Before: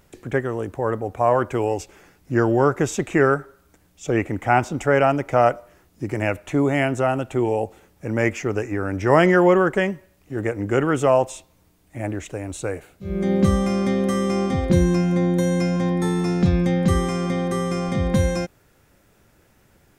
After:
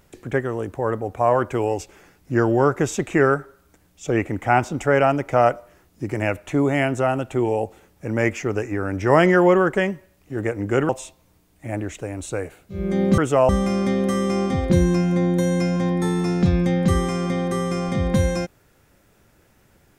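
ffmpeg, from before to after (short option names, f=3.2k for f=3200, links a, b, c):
-filter_complex "[0:a]asplit=4[a][b][c][d];[a]atrim=end=10.892[e];[b]atrim=start=11.198:end=13.492[f];[c]atrim=start=10.888:end=11.202[g];[d]atrim=start=13.488[h];[e][f]acrossfade=d=0.004:c1=hsin:c2=hsin[i];[i][g]acrossfade=d=0.004:c1=hsin:c2=hsin[j];[j][h]acrossfade=d=0.004:c1=hsin:c2=hsin"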